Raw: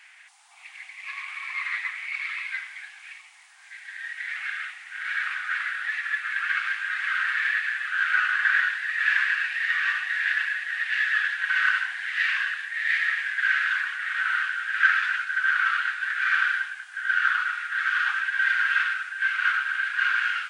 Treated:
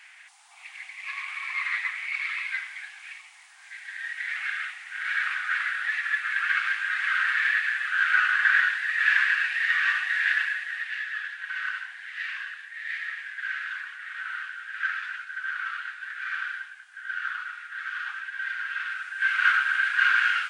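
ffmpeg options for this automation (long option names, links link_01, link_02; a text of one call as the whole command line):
ffmpeg -i in.wav -af "volume=12.5dB,afade=type=out:start_time=10.31:duration=0.73:silence=0.316228,afade=type=in:start_time=18.79:duration=0.67:silence=0.266073" out.wav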